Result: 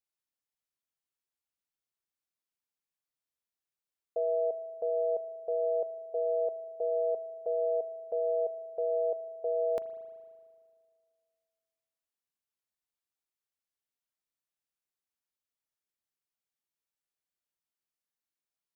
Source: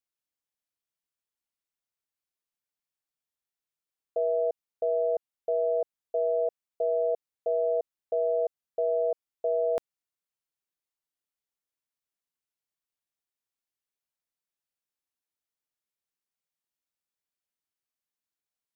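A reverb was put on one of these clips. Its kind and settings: spring tank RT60 2 s, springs 38 ms, chirp 25 ms, DRR 13 dB; gain -3.5 dB

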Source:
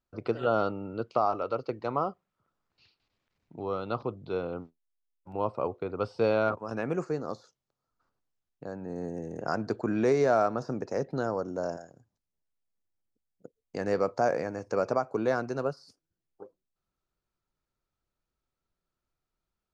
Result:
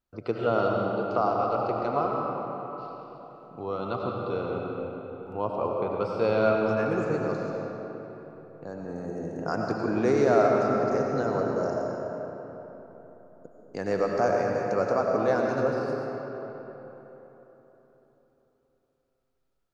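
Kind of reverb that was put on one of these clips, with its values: digital reverb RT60 3.9 s, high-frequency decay 0.6×, pre-delay 55 ms, DRR -1 dB

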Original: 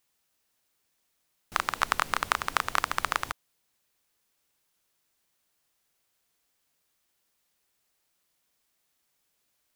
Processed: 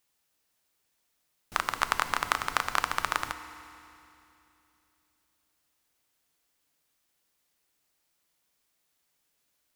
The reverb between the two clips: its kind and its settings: FDN reverb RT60 2.8 s, low-frequency decay 1.25×, high-frequency decay 1×, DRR 10 dB; gain -1 dB

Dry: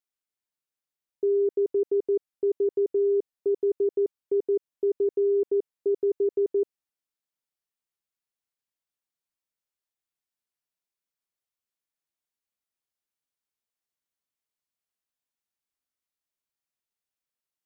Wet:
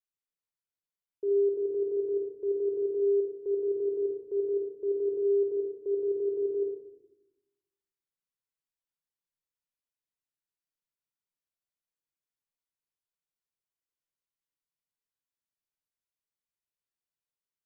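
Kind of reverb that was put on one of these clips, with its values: shoebox room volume 2600 m³, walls furnished, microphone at 4.9 m; gain -11.5 dB

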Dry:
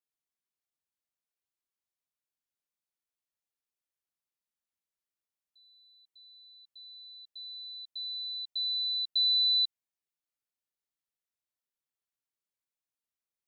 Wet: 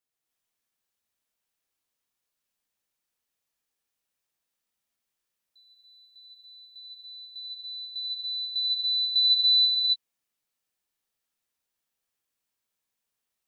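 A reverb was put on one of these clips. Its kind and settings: non-linear reverb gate 0.31 s rising, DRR -3.5 dB; gain +4 dB

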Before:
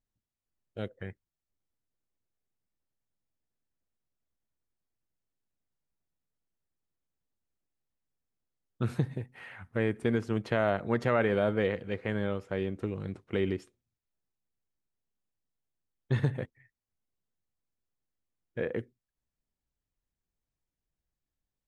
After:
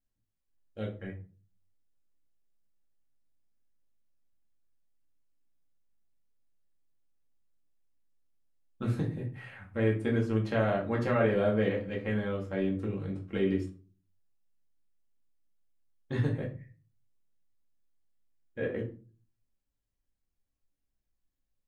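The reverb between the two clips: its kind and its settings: shoebox room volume 200 m³, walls furnished, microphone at 2.2 m; gain -5.5 dB

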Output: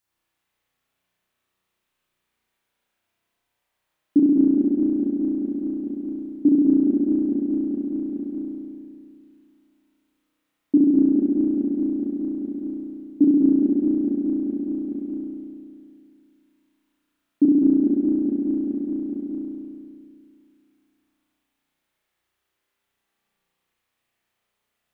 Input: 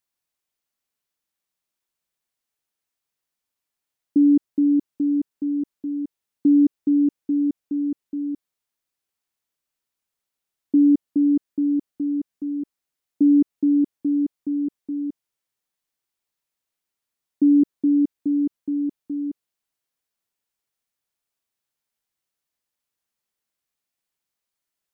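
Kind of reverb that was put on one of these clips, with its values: spring tank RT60 2.3 s, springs 33 ms, chirp 60 ms, DRR -9.5 dB; gain +2 dB

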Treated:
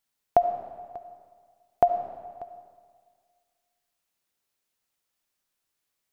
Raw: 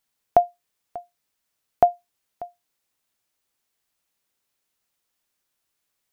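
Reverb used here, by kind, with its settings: digital reverb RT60 1.8 s, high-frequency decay 0.85×, pre-delay 30 ms, DRR 8 dB; gain -3.5 dB

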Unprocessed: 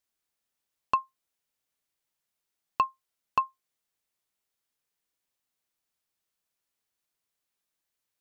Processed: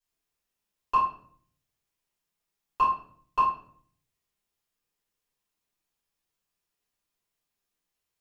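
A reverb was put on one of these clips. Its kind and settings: shoebox room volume 71 m³, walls mixed, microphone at 3.4 m; gain -12.5 dB

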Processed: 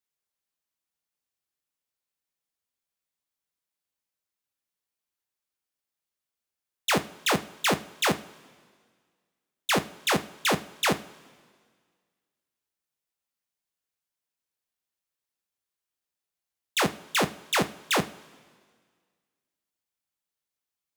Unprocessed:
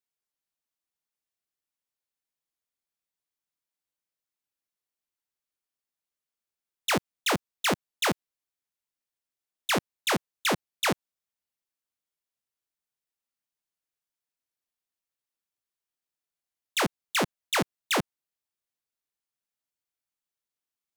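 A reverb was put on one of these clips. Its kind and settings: two-slope reverb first 0.33 s, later 1.8 s, from -18 dB, DRR 8 dB; gain +1 dB

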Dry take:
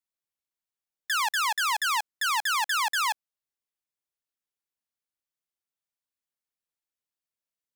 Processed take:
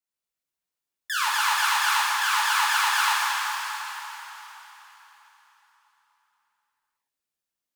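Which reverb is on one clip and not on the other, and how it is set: plate-style reverb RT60 4 s, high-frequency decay 0.9×, DRR -7 dB; gain -3.5 dB

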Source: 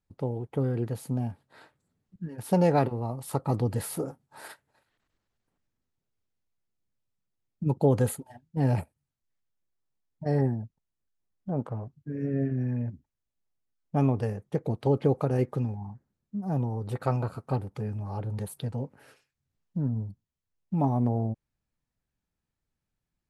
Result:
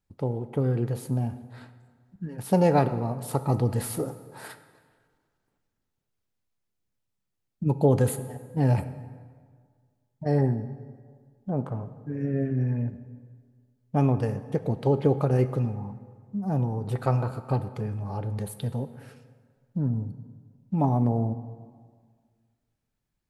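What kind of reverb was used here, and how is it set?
plate-style reverb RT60 1.8 s, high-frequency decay 0.65×, DRR 11 dB; gain +2 dB

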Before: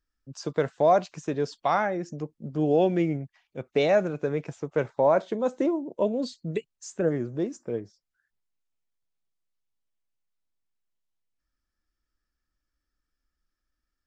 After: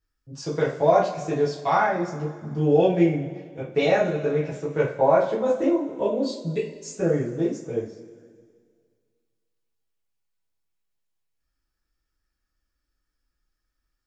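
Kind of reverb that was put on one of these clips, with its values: two-slope reverb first 0.32 s, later 2 s, from -18 dB, DRR -8 dB; gain -5 dB

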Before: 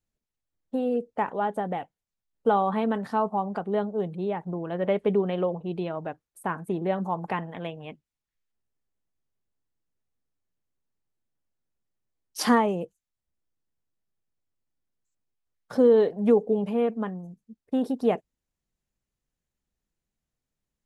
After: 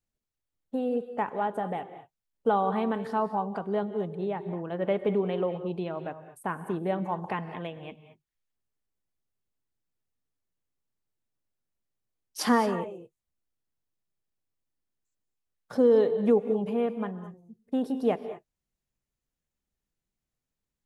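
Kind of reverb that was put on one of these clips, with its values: non-linear reverb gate 0.25 s rising, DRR 11 dB; gain -2.5 dB

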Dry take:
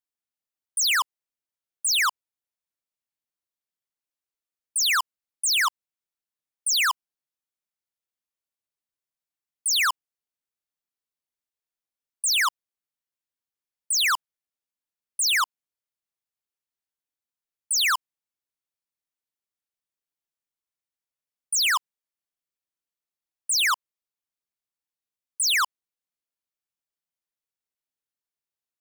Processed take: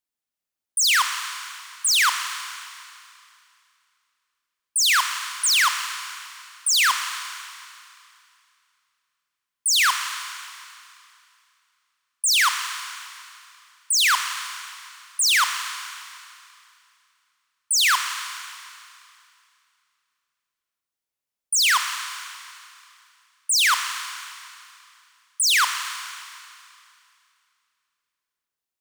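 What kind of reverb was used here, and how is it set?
Schroeder reverb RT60 2.5 s, combs from 26 ms, DRR 6.5 dB; gain +3 dB

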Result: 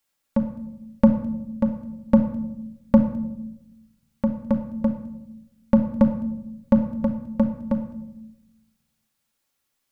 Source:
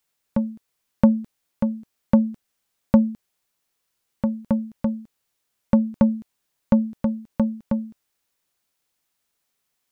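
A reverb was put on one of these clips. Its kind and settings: shoebox room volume 2600 m³, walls furnished, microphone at 2.3 m; gain -1.5 dB

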